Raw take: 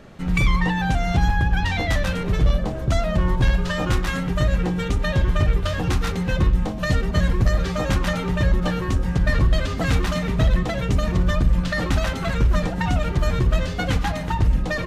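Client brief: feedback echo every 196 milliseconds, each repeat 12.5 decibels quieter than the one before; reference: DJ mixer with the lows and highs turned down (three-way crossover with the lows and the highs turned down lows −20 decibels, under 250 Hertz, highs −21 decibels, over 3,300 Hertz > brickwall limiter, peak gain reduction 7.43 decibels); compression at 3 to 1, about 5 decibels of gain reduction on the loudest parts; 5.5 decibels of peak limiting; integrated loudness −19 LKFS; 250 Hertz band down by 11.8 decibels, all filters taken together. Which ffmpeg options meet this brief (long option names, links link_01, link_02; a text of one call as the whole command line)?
ffmpeg -i in.wav -filter_complex "[0:a]equalizer=frequency=250:width_type=o:gain=-6,acompressor=threshold=-20dB:ratio=3,alimiter=limit=-17.5dB:level=0:latency=1,acrossover=split=250 3300:gain=0.1 1 0.0891[link_01][link_02][link_03];[link_01][link_02][link_03]amix=inputs=3:normalize=0,aecho=1:1:196|392|588:0.237|0.0569|0.0137,volume=15.5dB,alimiter=limit=-9.5dB:level=0:latency=1" out.wav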